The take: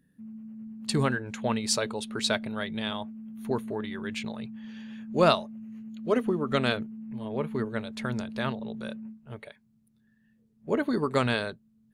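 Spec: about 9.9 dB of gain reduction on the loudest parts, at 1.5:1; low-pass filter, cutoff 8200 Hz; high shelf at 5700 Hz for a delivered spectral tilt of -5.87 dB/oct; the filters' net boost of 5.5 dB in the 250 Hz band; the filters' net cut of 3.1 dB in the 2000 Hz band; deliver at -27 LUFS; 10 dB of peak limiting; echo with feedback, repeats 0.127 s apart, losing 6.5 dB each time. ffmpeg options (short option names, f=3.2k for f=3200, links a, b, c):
-af "lowpass=8.2k,equalizer=f=250:t=o:g=6.5,equalizer=f=2k:t=o:g=-5,highshelf=f=5.7k:g=4.5,acompressor=threshold=-44dB:ratio=1.5,alimiter=level_in=3dB:limit=-24dB:level=0:latency=1,volume=-3dB,aecho=1:1:127|254|381|508|635|762:0.473|0.222|0.105|0.0491|0.0231|0.0109,volume=8dB"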